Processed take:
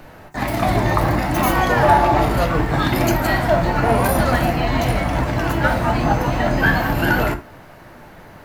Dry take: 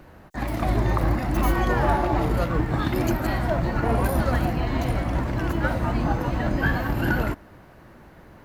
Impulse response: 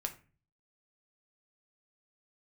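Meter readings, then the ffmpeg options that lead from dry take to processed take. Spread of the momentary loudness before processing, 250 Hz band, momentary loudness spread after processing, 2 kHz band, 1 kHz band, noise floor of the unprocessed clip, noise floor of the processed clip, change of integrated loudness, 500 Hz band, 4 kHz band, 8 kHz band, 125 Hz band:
4 LU, +4.5 dB, 5 LU, +8.5 dB, +9.0 dB, -49 dBFS, -42 dBFS, +6.5 dB, +7.5 dB, +10.0 dB, +10.5 dB, +4.0 dB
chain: -filter_complex "[0:a]equalizer=f=730:t=o:w=1:g=5,acrossover=split=1700[a][b];[b]acontrast=55[c];[a][c]amix=inputs=2:normalize=0[d];[1:a]atrim=start_sample=2205,atrim=end_sample=3969[e];[d][e]afir=irnorm=-1:irlink=0,volume=4.5dB"

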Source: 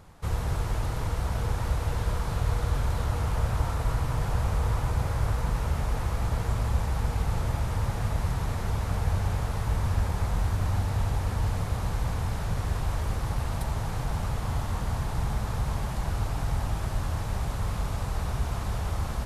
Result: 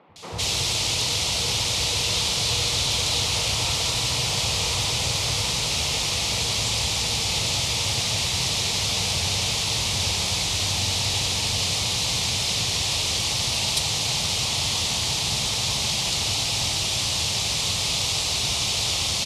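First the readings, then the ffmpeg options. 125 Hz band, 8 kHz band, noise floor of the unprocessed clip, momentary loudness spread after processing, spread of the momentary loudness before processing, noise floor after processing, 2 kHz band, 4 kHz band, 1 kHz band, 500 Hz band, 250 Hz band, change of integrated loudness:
-3.5 dB, +21.5 dB, -32 dBFS, 1 LU, 3 LU, -25 dBFS, +11.5 dB, +25.0 dB, +2.5 dB, +3.0 dB, +0.5 dB, +8.0 dB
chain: -filter_complex "[0:a]highpass=130,lowpass=5.1k,aexciter=amount=10:drive=7.7:freq=2.4k,acrossover=split=200|1600[a][b][c];[a]adelay=90[d];[c]adelay=160[e];[d][b][e]amix=inputs=3:normalize=0,volume=3.5dB"

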